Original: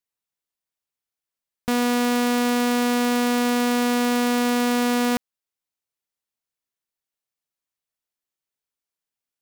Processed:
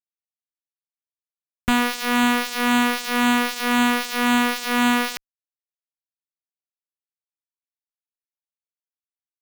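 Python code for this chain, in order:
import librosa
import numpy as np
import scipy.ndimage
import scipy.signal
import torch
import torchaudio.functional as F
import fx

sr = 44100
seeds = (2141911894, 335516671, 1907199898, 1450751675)

y = fx.tone_stack(x, sr, knobs='10-0-10')
y = fx.tremolo_shape(y, sr, shape='triangle', hz=1.9, depth_pct=95)
y = fx.fuzz(y, sr, gain_db=44.0, gate_db=-50.0)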